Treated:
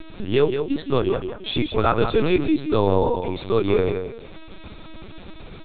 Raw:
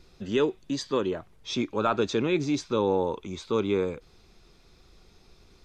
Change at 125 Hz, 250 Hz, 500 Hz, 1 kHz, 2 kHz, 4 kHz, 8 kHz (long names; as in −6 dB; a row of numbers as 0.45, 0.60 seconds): +9.5 dB, +5.5 dB, +6.5 dB, +6.0 dB, +5.0 dB, +5.0 dB, below −35 dB